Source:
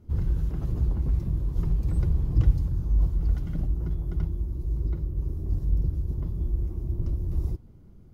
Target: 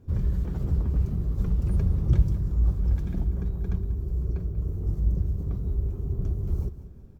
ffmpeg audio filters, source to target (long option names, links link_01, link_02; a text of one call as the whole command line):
ffmpeg -i in.wav -filter_complex "[0:a]asplit=2[link_01][link_02];[link_02]aecho=0:1:213|426|639|852:0.188|0.0772|0.0317|0.013[link_03];[link_01][link_03]amix=inputs=2:normalize=0,asetrate=49833,aresample=44100" out.wav